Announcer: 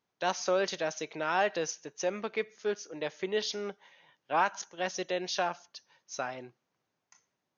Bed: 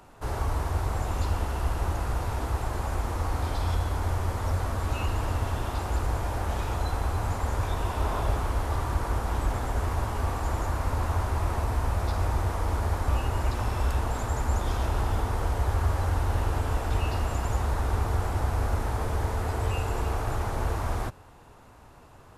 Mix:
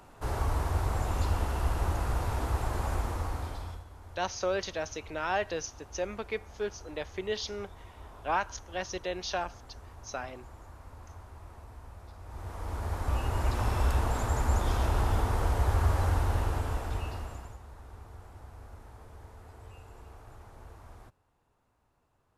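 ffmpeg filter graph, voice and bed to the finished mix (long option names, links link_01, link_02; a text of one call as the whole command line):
ffmpeg -i stem1.wav -i stem2.wav -filter_complex "[0:a]adelay=3950,volume=-2dB[link_01];[1:a]volume=19dB,afade=type=out:start_time=2.92:duration=0.92:silence=0.105925,afade=type=in:start_time=12.24:duration=1.44:silence=0.0944061,afade=type=out:start_time=16.06:duration=1.52:silence=0.0891251[link_02];[link_01][link_02]amix=inputs=2:normalize=0" out.wav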